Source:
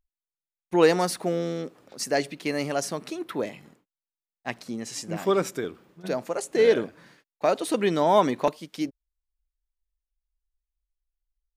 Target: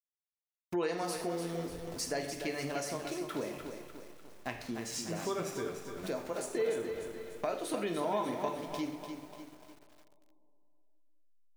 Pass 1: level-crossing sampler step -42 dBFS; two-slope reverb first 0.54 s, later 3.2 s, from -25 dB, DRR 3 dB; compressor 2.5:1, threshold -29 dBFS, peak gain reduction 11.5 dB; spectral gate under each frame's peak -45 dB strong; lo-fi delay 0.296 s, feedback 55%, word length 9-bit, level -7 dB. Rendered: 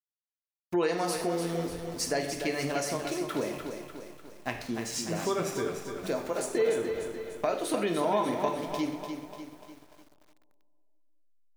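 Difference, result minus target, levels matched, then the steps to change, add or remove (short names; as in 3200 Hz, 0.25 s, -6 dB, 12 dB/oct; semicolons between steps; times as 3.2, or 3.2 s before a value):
compressor: peak gain reduction -5.5 dB
change: compressor 2.5:1, threshold -38.5 dBFS, peak gain reduction 17.5 dB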